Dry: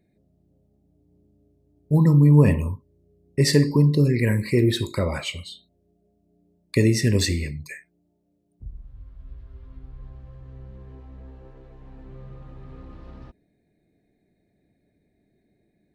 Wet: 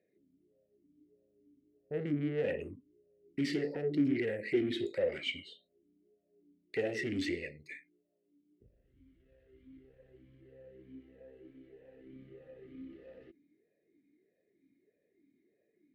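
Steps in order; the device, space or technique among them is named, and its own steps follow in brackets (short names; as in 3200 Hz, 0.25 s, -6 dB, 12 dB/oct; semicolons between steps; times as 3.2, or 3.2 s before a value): talk box (tube stage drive 24 dB, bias 0.5; vowel sweep e-i 1.6 Hz); gain +7 dB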